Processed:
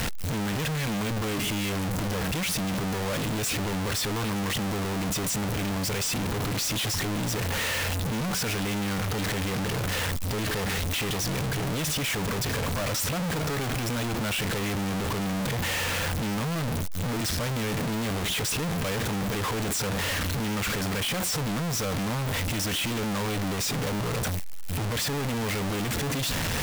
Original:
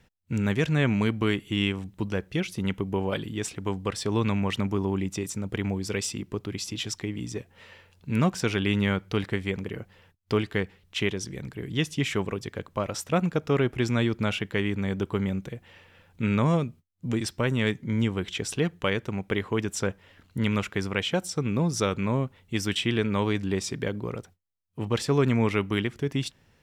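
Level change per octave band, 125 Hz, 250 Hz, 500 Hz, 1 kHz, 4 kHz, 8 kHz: -0.5 dB, -2.5 dB, -3.5 dB, +2.5 dB, +4.0 dB, +7.5 dB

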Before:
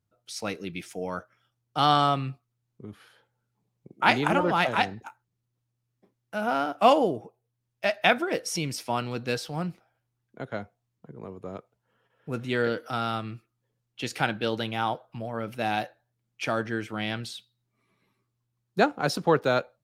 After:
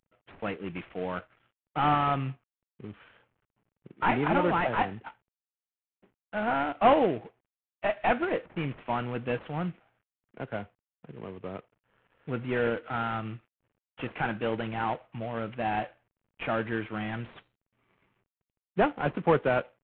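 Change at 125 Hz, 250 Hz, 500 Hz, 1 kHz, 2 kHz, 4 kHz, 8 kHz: -1.0 dB, -1.5 dB, -1.5 dB, -2.0 dB, -4.0 dB, -11.0 dB, under -35 dB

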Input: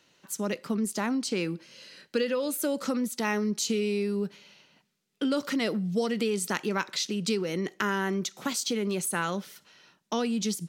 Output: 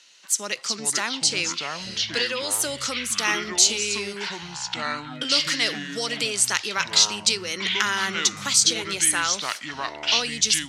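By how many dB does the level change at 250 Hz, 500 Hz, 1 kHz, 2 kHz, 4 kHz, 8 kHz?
-7.0 dB, -3.0 dB, +5.0 dB, +9.5 dB, +14.5 dB, +14.0 dB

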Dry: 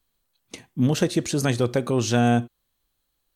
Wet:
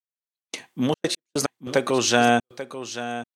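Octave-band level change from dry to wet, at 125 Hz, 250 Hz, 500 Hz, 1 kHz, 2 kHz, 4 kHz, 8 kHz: -10.0 dB, -3.0 dB, +1.5 dB, +5.5 dB, +5.5 dB, +5.0 dB, +4.0 dB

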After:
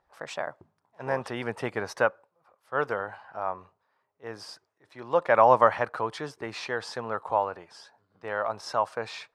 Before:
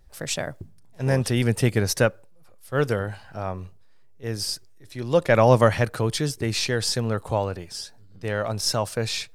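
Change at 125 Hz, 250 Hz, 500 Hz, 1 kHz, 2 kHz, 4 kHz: -19.0 dB, -12.0 dB, -4.0 dB, +3.0 dB, -2.5 dB, -13.5 dB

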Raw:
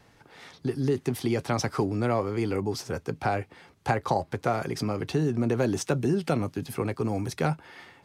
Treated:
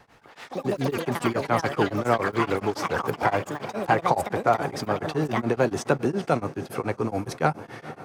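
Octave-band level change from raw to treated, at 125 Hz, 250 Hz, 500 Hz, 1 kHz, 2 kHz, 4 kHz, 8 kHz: -1.5 dB, +0.5 dB, +3.5 dB, +6.5 dB, +6.5 dB, +2.0 dB, -1.0 dB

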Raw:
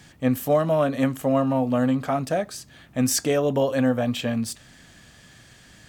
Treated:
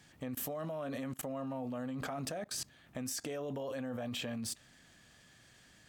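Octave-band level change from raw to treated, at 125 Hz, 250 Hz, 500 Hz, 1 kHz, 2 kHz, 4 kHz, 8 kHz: -17.5 dB, -17.5 dB, -18.0 dB, -17.0 dB, -13.5 dB, -10.0 dB, -11.5 dB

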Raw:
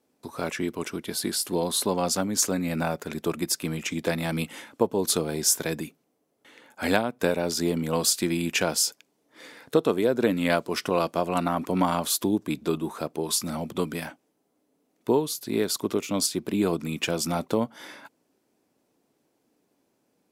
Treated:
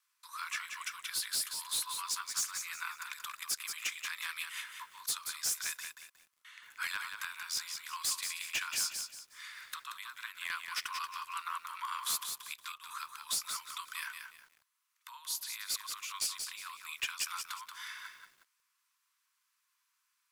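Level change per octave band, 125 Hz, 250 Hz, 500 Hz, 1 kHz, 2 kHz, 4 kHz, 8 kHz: under -35 dB, under -40 dB, under -40 dB, -11.0 dB, -5.0 dB, -6.0 dB, -7.5 dB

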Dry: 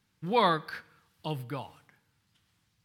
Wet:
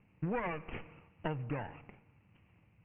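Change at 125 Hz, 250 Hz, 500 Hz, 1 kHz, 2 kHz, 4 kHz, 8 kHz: -2.0 dB, -4.0 dB, -8.5 dB, -12.5 dB, -7.0 dB, -19.0 dB, under -20 dB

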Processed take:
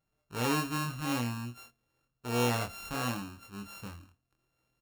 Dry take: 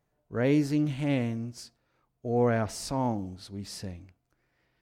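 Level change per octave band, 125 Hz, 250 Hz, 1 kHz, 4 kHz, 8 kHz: -5.0 dB, -7.0 dB, 0.0 dB, +3.5 dB, +1.5 dB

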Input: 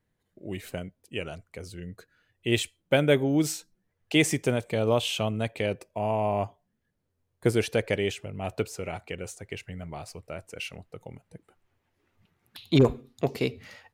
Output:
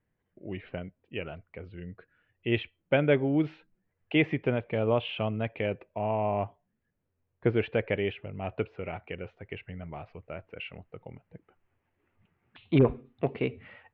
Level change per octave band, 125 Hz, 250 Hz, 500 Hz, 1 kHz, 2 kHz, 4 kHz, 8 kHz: -2.0 dB, -2.0 dB, -2.0 dB, -2.0 dB, -2.5 dB, -8.0 dB, under -40 dB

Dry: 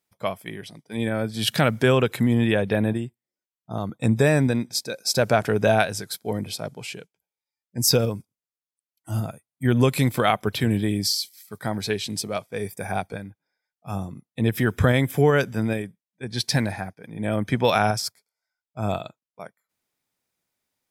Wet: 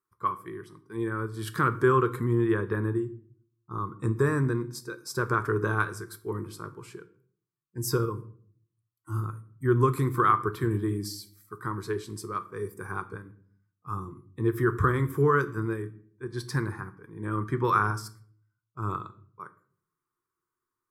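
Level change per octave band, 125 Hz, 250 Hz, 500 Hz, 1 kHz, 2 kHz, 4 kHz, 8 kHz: -4.5 dB, -6.5 dB, -5.5 dB, -1.0 dB, -5.0 dB, -17.5 dB, -12.5 dB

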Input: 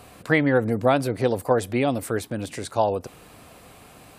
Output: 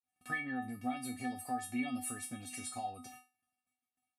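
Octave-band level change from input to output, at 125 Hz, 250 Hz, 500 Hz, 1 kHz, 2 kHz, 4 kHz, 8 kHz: -23.0 dB, -14.0 dB, -30.5 dB, -13.0 dB, -13.0 dB, -13.5 dB, -4.0 dB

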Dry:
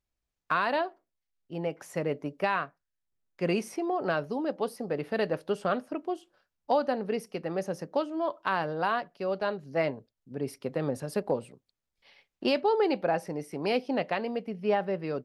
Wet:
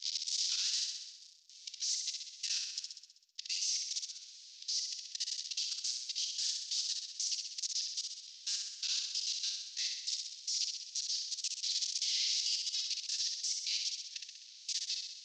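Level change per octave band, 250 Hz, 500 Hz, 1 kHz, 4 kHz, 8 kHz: under -40 dB, under -40 dB, under -40 dB, +11.0 dB, +18.5 dB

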